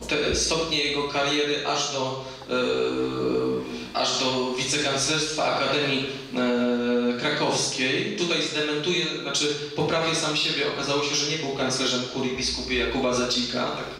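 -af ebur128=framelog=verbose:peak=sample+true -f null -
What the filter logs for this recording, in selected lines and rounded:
Integrated loudness:
  I:         -24.1 LUFS
  Threshold: -34.2 LUFS
Loudness range:
  LRA:         1.6 LU
  Threshold: -44.2 LUFS
  LRA low:   -25.3 LUFS
  LRA high:  -23.6 LUFS
Sample peak:
  Peak:      -13.9 dBFS
True peak:
  Peak:      -13.9 dBFS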